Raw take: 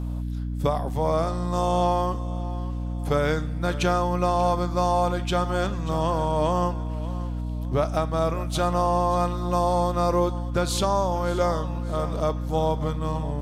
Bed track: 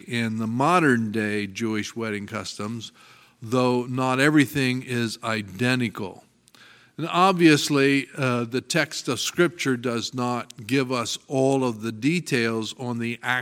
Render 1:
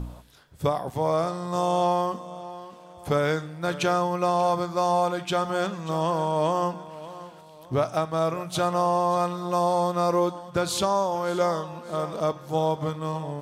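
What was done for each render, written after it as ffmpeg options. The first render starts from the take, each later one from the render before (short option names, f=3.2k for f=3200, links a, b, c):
-af "bandreject=f=60:t=h:w=4,bandreject=f=120:t=h:w=4,bandreject=f=180:t=h:w=4,bandreject=f=240:t=h:w=4,bandreject=f=300:t=h:w=4"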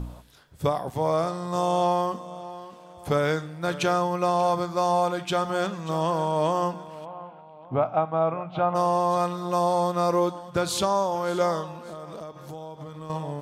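-filter_complex "[0:a]asplit=3[a][b][c];[a]afade=t=out:st=7.04:d=0.02[d];[b]highpass=120,equalizer=f=380:t=q:w=4:g=-6,equalizer=f=780:t=q:w=4:g=7,equalizer=f=1.8k:t=q:w=4:g=-9,lowpass=f=2.5k:w=0.5412,lowpass=f=2.5k:w=1.3066,afade=t=in:st=7.04:d=0.02,afade=t=out:st=8.74:d=0.02[e];[c]afade=t=in:st=8.74:d=0.02[f];[d][e][f]amix=inputs=3:normalize=0,asettb=1/sr,asplit=3[g][h][i];[g]atrim=end=11.714[j];[h]atrim=start=11.71:end=13.1,asetpts=PTS-STARTPTS,afade=t=in:d=0.004:c=qsin,afade=t=out:st=1.386:d=0.004:c=qsin,acompressor=threshold=-34dB:ratio=10:attack=3.2:release=140:knee=1:detection=peak[k];[i]atrim=start=13.096[l];[j][k]acrossfade=d=0.004:c1=hsin:c2=qsin[m];[m][l]acrossfade=d=0.004:c1=qsin:c2=hsin"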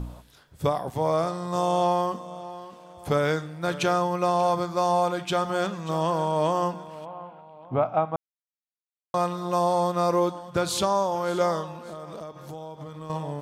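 -filter_complex "[0:a]asplit=3[a][b][c];[a]atrim=end=8.16,asetpts=PTS-STARTPTS,afade=t=out:st=8.156:d=0.004:c=hsin[d];[b]atrim=start=8.16:end=9.14,asetpts=PTS-STARTPTS,volume=0[e];[c]atrim=start=9.14,asetpts=PTS-STARTPTS,afade=t=in:d=0.004:c=hsin[f];[d][e][f]concat=n=3:v=0:a=1"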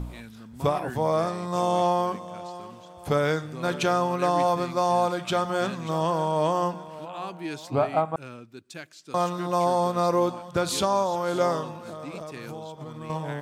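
-filter_complex "[1:a]volume=-18.5dB[a];[0:a][a]amix=inputs=2:normalize=0"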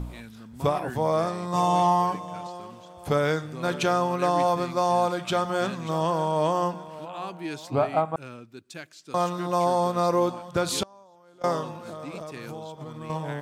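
-filter_complex "[0:a]asettb=1/sr,asplit=3[a][b][c];[a]atrim=end=1.534[d];[b]atrim=start=1.53:end=2.47,asetpts=PTS-STARTPTS,afade=t=in:d=0.004:c=qsin,afade=t=out:st=0.936:d=0.004:c=qsin,aecho=1:1:6.7:0.82,atrim=end_sample=41454[e];[c]atrim=start=2.466[f];[d][e]acrossfade=d=0.004:c1=hsin:c2=qsin[g];[g][f]acrossfade=d=0.004:c1=qsin:c2=hsin,asettb=1/sr,asplit=3[h][i][j];[h]atrim=end=10.834[k];[i]atrim=start=10.83:end=11.44,asetpts=PTS-STARTPTS,afade=t=in:d=0.004:c=qsin,afade=t=out:st=0.606:d=0.004:c=qsin,agate=range=-28dB:threshold=-18dB:ratio=16:release=100:detection=peak[l];[j]atrim=start=11.436[m];[k][l]acrossfade=d=0.004:c1=hsin:c2=qsin[n];[n][m]acrossfade=d=0.004:c1=qsin:c2=hsin"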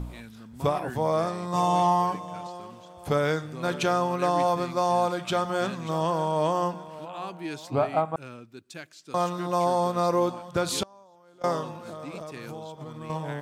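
-af "volume=-1dB"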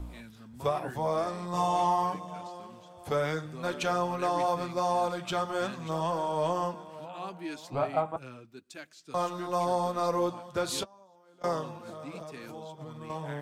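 -filter_complex "[0:a]acrossover=split=340|4200[a][b][c];[a]asoftclip=type=tanh:threshold=-30dB[d];[d][b][c]amix=inputs=3:normalize=0,flanger=delay=2.9:depth=6.5:regen=-40:speed=0.8:shape=triangular"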